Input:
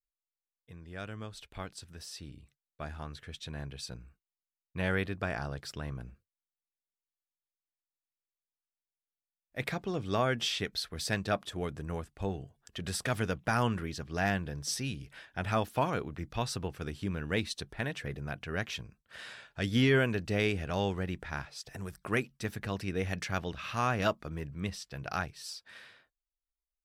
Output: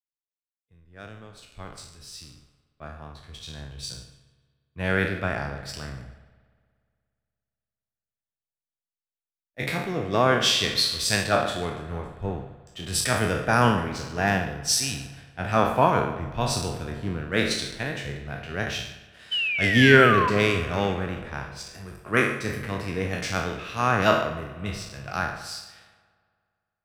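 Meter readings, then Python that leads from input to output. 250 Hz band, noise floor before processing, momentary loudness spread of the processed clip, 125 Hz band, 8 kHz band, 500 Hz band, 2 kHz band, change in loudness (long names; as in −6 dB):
+7.5 dB, below −85 dBFS, 21 LU, +6.0 dB, +11.5 dB, +9.0 dB, +11.0 dB, +10.5 dB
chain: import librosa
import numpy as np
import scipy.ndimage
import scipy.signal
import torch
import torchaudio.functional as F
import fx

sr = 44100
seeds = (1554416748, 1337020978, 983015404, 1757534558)

p1 = fx.spec_trails(x, sr, decay_s=0.81)
p2 = fx.backlash(p1, sr, play_db=-41.0)
p3 = p1 + (p2 * librosa.db_to_amplitude(-4.5))
p4 = fx.spec_paint(p3, sr, seeds[0], shape='fall', start_s=19.31, length_s=0.99, low_hz=970.0, high_hz=3100.0, level_db=-26.0)
p5 = p4 + fx.echo_feedback(p4, sr, ms=146, feedback_pct=42, wet_db=-15.5, dry=0)
p6 = fx.rev_spring(p5, sr, rt60_s=3.7, pass_ms=(58,), chirp_ms=55, drr_db=10.0)
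y = fx.band_widen(p6, sr, depth_pct=70)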